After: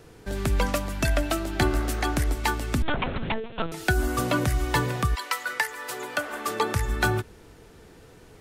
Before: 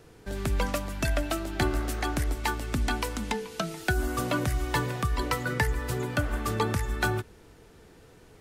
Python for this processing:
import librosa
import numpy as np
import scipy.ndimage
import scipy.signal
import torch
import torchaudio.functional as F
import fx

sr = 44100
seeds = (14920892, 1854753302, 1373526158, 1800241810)

y = fx.lpc_vocoder(x, sr, seeds[0], excitation='pitch_kept', order=8, at=(2.82, 3.72))
y = fx.highpass(y, sr, hz=fx.line((5.14, 1200.0), (6.74, 310.0)), slope=12, at=(5.14, 6.74), fade=0.02)
y = F.gain(torch.from_numpy(y), 3.5).numpy()